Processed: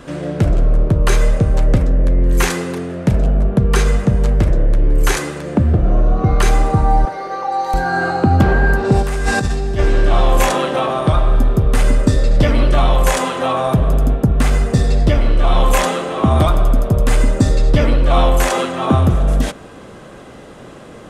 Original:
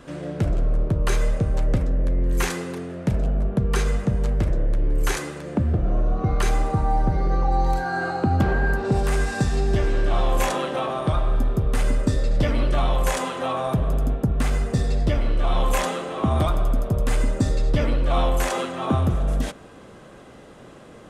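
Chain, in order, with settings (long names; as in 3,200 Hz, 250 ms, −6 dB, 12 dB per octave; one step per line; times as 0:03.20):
0:07.05–0:07.74: high-pass filter 590 Hz 12 dB per octave
0:09.02–0:09.79: compressor whose output falls as the input rises −25 dBFS, ratio −1
level +8 dB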